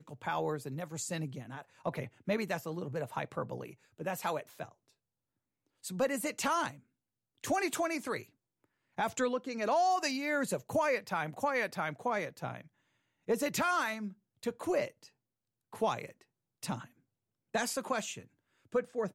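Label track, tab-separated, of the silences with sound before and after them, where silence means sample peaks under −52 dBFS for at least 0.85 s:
4.720000	5.840000	silence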